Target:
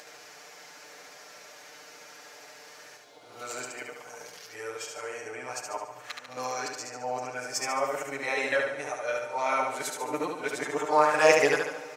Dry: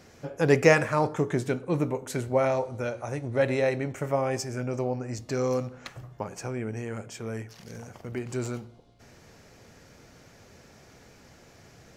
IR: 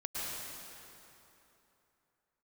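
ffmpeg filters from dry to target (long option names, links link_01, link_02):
-filter_complex "[0:a]areverse,highpass=660,aecho=1:1:6.7:0.88,acompressor=mode=upward:threshold=-44dB:ratio=2.5,aecho=1:1:72|144|216|288|360|432:0.631|0.303|0.145|0.0698|0.0335|0.0161,asplit=2[link_01][link_02];[1:a]atrim=start_sample=2205,asetrate=34839,aresample=44100[link_03];[link_02][link_03]afir=irnorm=-1:irlink=0,volume=-23dB[link_04];[link_01][link_04]amix=inputs=2:normalize=0"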